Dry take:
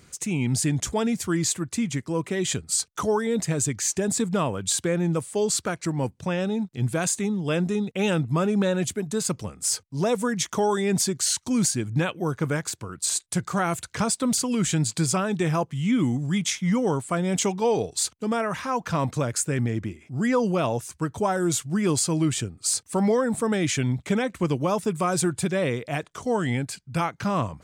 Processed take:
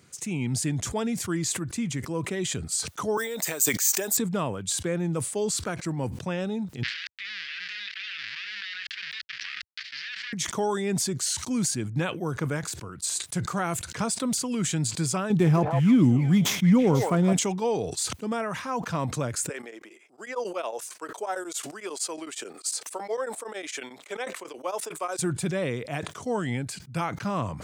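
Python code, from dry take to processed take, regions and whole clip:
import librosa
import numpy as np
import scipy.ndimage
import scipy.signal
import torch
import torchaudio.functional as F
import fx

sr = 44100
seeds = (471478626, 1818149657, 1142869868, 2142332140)

y = fx.chain(x, sr, fx.highpass(hz=520.0, slope=12),
    fx.high_shelf(hz=5800.0, db=11.0),
    fx.resample_bad(factor=2, down='filtered', up='hold'), at=(3.17, 4.17))
y = fx.chain(y, sr, fx.dead_time(dead_ms=0.29),
    fx.ellip_bandpass(low_hz=1700.0, high_hz=4800.0, order=3, stop_db=50),
    fx.env_flatten(amount_pct=100), at=(6.83, 10.33))
y = fx.chain(y, sr, fx.low_shelf(hz=450.0, db=10.0),
    fx.echo_stepped(ms=163, hz=720.0, octaves=1.4, feedback_pct=70, wet_db=-2.0),
    fx.running_max(window=3), at=(15.3, 17.33))
y = fx.chain(y, sr, fx.highpass(hz=420.0, slope=24),
    fx.tremolo_abs(hz=11.0), at=(19.49, 25.19))
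y = scipy.signal.sosfilt(scipy.signal.butter(4, 84.0, 'highpass', fs=sr, output='sos'), y)
y = fx.sustainer(y, sr, db_per_s=64.0)
y = y * 10.0 ** (-4.0 / 20.0)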